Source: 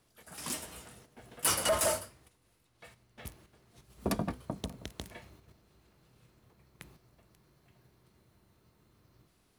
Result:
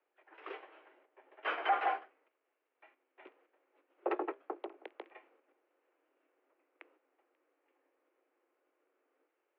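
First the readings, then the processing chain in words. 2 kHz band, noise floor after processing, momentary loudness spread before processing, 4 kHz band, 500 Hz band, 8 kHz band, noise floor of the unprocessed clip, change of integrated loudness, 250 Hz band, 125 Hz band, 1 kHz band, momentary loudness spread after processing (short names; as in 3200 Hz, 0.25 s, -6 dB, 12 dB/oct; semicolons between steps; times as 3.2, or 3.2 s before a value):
0.0 dB, -84 dBFS, 22 LU, -12.5 dB, -5.5 dB, under -40 dB, -71 dBFS, -4.5 dB, -8.0 dB, under -40 dB, +4.0 dB, 20 LU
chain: G.711 law mismatch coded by A; mistuned SSB +150 Hz 190–2500 Hz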